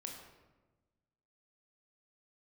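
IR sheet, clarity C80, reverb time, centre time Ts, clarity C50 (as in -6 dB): 6.0 dB, 1.2 s, 44 ms, 4.0 dB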